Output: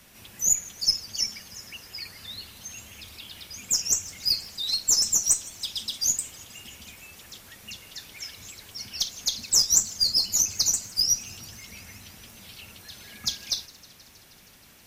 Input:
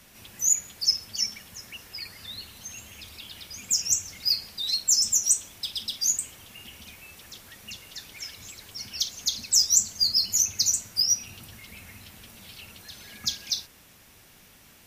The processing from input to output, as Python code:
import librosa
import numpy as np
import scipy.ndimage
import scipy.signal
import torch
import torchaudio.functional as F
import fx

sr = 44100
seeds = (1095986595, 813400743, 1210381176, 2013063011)

y = fx.cheby_harmonics(x, sr, harmonics=(6,), levels_db=(-29,), full_scale_db=-5.5)
y = fx.echo_warbled(y, sr, ms=158, feedback_pct=79, rate_hz=2.8, cents=168, wet_db=-23.0)